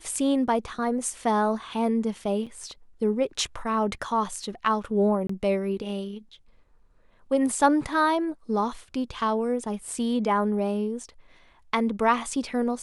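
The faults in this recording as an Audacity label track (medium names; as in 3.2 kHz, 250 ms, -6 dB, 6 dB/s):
2.460000	2.470000	dropout 6.1 ms
5.270000	5.290000	dropout 24 ms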